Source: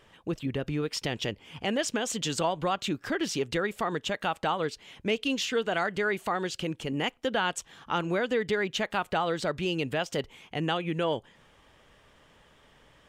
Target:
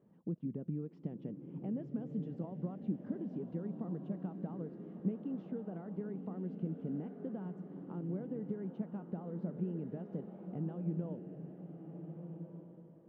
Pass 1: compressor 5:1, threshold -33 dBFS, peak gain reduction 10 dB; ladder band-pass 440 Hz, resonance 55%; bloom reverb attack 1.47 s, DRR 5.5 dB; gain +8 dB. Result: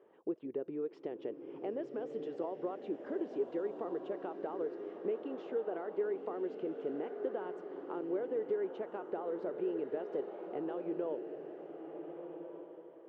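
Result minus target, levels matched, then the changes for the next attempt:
500 Hz band +8.0 dB
change: ladder band-pass 210 Hz, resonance 55%

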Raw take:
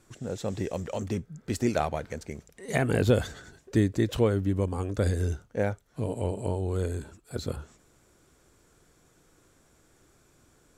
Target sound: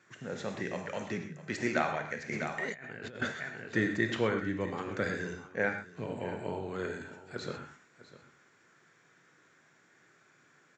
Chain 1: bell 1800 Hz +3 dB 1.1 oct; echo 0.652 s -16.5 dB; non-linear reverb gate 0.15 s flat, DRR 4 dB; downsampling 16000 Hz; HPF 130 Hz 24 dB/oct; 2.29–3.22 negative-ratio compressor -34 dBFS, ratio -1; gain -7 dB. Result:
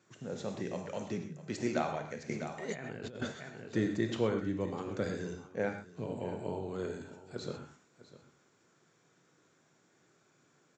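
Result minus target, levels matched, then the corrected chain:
2000 Hz band -7.5 dB
bell 1800 Hz +15 dB 1.1 oct; echo 0.652 s -16.5 dB; non-linear reverb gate 0.15 s flat, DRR 4 dB; downsampling 16000 Hz; HPF 130 Hz 24 dB/oct; 2.29–3.22 negative-ratio compressor -34 dBFS, ratio -1; gain -7 dB

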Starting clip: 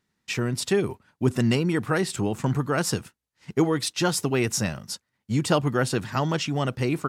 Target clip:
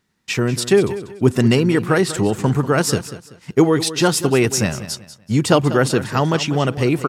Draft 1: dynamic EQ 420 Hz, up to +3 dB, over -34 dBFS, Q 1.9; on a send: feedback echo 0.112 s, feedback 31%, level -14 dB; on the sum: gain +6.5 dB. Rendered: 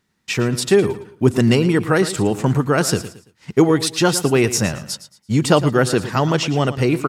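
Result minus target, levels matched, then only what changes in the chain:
echo 79 ms early
change: feedback echo 0.191 s, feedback 31%, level -14 dB

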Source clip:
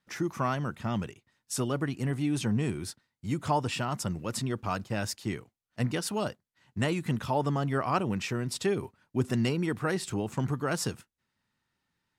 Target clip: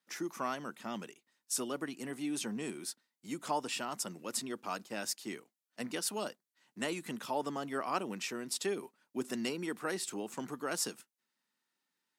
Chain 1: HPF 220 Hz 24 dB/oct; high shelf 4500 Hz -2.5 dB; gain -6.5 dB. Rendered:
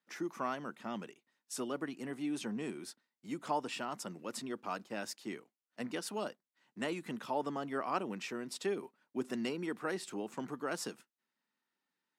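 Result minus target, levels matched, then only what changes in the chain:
8000 Hz band -7.0 dB
change: high shelf 4500 Hz +9 dB

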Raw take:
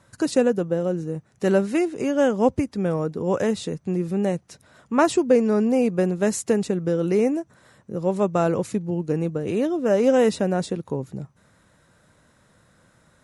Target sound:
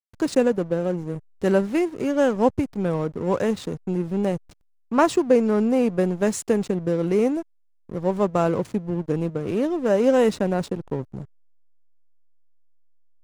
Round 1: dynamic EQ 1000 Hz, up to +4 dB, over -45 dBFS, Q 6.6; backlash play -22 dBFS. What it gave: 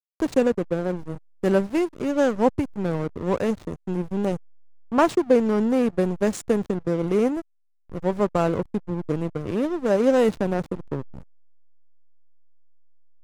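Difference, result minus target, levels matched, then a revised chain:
backlash: distortion +9 dB
dynamic EQ 1000 Hz, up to +4 dB, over -45 dBFS, Q 6.6; backlash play -31 dBFS

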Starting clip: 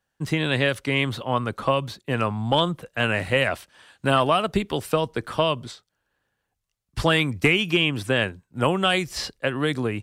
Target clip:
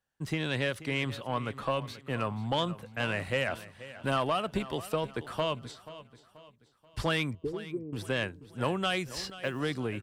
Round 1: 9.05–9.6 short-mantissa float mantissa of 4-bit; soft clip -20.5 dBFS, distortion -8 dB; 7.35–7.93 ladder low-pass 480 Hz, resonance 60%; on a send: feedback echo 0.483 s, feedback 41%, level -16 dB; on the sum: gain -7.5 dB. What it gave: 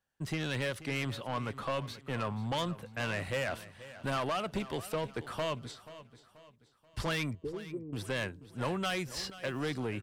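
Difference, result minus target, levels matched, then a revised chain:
soft clip: distortion +10 dB
9.05–9.6 short-mantissa float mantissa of 4-bit; soft clip -11.5 dBFS, distortion -18 dB; 7.35–7.93 ladder low-pass 480 Hz, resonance 60%; on a send: feedback echo 0.483 s, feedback 41%, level -16 dB; on the sum: gain -7.5 dB

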